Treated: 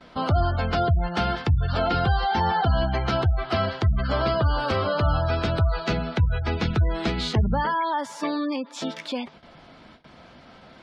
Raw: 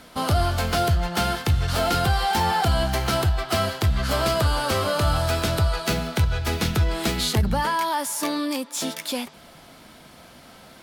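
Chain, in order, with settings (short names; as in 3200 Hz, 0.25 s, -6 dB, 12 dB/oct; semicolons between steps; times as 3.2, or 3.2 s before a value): spectral gate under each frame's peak -25 dB strong; air absorption 150 m; gate with hold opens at -39 dBFS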